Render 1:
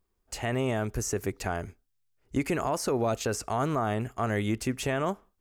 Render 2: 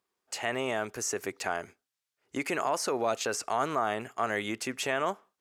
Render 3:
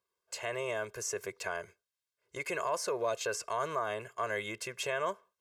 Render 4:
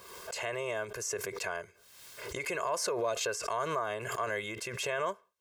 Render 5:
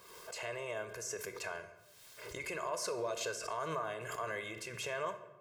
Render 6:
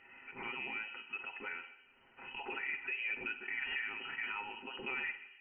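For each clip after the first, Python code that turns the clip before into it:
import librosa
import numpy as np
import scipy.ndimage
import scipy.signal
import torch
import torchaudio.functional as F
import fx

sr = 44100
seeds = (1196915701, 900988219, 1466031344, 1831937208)

y1 = fx.weighting(x, sr, curve='A')
y1 = y1 * librosa.db_to_amplitude(1.5)
y2 = y1 + 0.97 * np.pad(y1, (int(1.9 * sr / 1000.0), 0))[:len(y1)]
y2 = y2 * librosa.db_to_amplitude(-7.0)
y3 = fx.pre_swell(y2, sr, db_per_s=46.0)
y4 = fx.room_shoebox(y3, sr, seeds[0], volume_m3=500.0, walls='mixed', distance_m=0.52)
y4 = y4 * librosa.db_to_amplitude(-6.0)
y5 = y4 + 0.53 * np.pad(y4, (int(7.3 * sr / 1000.0), 0))[:len(y4)]
y5 = fx.freq_invert(y5, sr, carrier_hz=3000)
y5 = y5 * librosa.db_to_amplitude(-2.0)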